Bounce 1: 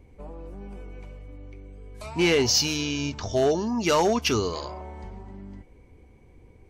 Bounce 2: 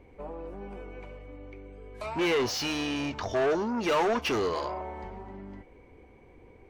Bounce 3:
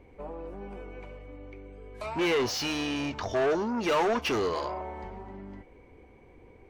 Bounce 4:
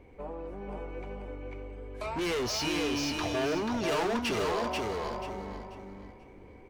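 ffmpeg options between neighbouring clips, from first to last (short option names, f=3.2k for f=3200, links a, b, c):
-af "asoftclip=type=tanh:threshold=-26.5dB,bass=f=250:g=-10,treble=f=4k:g=-13,volume=5dB"
-af anull
-af "asoftclip=type=hard:threshold=-29dB,aecho=1:1:487|974|1461|1948:0.668|0.18|0.0487|0.0132"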